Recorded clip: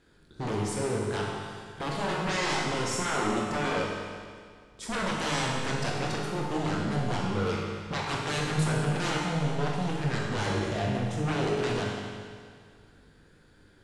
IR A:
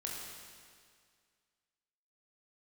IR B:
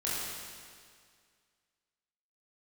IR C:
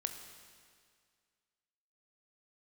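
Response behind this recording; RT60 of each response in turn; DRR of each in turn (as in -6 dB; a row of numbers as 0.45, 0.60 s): A; 2.0, 2.0, 2.0 s; -3.0, -8.5, 6.0 dB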